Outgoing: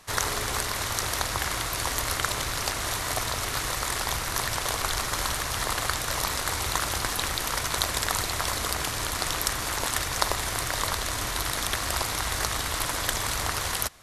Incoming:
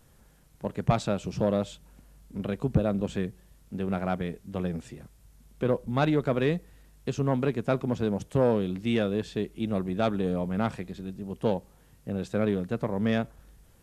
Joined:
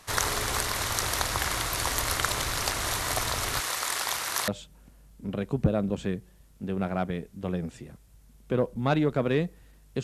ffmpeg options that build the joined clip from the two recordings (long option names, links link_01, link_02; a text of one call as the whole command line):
ffmpeg -i cue0.wav -i cue1.wav -filter_complex "[0:a]asettb=1/sr,asplit=3[link_01][link_02][link_03];[link_01]atrim=end=3.604[link_04];[link_02]atrim=start=3.6:end=4.48,asetpts=PTS-STARTPTS,afade=type=in:duration=0.004:curve=qsin,afade=type=out:start_time=0.876:duration=0.004:curve=qsin,highpass=frequency=670:poles=1[link_05];[link_03]atrim=start=4.476[link_06];[link_04][link_05]acrossfade=duration=0.004:curve1=hsin:curve2=qsin[link_07];[link_07][link_06]acrossfade=duration=0.004:curve1=qsin:curve2=hsin,apad=whole_dur=10.03,atrim=end=10.03,atrim=end=4.482[link_08];[1:a]atrim=start=1.588:end=7.14[link_09];[link_08][link_09]acrossfade=duration=0.004:curve1=hsin:curve2=hsin" out.wav